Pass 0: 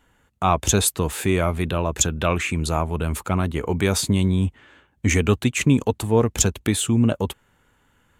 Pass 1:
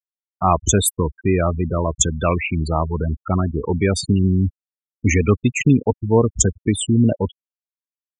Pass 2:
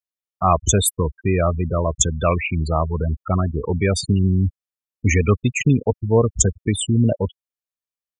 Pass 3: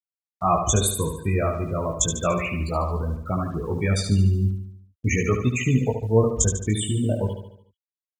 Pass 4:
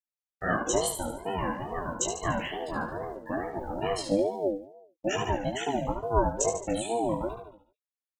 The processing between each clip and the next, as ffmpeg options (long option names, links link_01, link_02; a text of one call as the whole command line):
ffmpeg -i in.wav -af "afftfilt=real='re*gte(hypot(re,im),0.126)':imag='im*gte(hypot(re,im),0.126)':win_size=1024:overlap=0.75,volume=3dB" out.wav
ffmpeg -i in.wav -af "aecho=1:1:1.7:0.32,volume=-1dB" out.wav
ffmpeg -i in.wav -af "flanger=delay=16:depth=3.7:speed=0.36,acrusher=bits=8:mix=0:aa=0.5,aecho=1:1:73|146|219|292|365|438:0.447|0.223|0.112|0.0558|0.0279|0.014,volume=-1.5dB" out.wav
ffmpeg -i in.wav -af "flanger=delay=16.5:depth=3:speed=3,aeval=exprs='val(0)*sin(2*PI*490*n/s+490*0.2/2.3*sin(2*PI*2.3*n/s))':channel_layout=same,volume=-1.5dB" out.wav